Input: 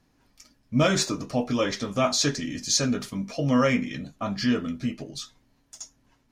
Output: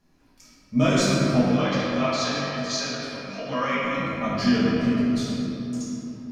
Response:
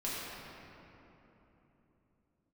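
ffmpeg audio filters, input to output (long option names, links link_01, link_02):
-filter_complex "[0:a]alimiter=limit=-12.5dB:level=0:latency=1:release=425,asettb=1/sr,asplit=3[link_01][link_02][link_03];[link_01]atrim=end=1.484[link_04];[link_02]atrim=start=1.48:end=3.83,asetpts=PTS-STARTPTS,afade=type=in:duration=0.004:curve=qsin,afade=type=out:start_time=2.346:duration=0.004:curve=qsin,acrossover=split=540 5400:gain=0.141 1 0.112[link_05][link_06][link_07];[link_05][link_06][link_07]amix=inputs=3:normalize=0[link_08];[link_03]atrim=start=3.826[link_09];[link_04][link_08]acrossfade=duration=0.004:curve1=hsin:curve2=qsin[link_10];[link_10][link_09]acrossfade=duration=0.004:curve1=qsin:curve2=hsin[link_11];[1:a]atrim=start_sample=2205[link_12];[link_11][link_12]afir=irnorm=-1:irlink=0"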